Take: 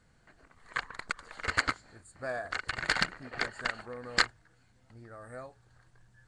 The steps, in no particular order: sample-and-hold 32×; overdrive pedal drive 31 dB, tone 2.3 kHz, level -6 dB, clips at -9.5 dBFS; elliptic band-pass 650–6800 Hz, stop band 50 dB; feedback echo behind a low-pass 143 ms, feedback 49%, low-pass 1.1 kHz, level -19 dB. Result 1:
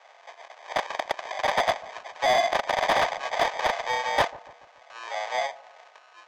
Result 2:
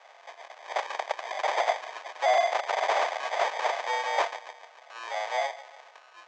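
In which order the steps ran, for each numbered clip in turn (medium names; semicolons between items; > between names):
sample-and-hold > elliptic band-pass > overdrive pedal > feedback echo behind a low-pass; feedback echo behind a low-pass > sample-and-hold > overdrive pedal > elliptic band-pass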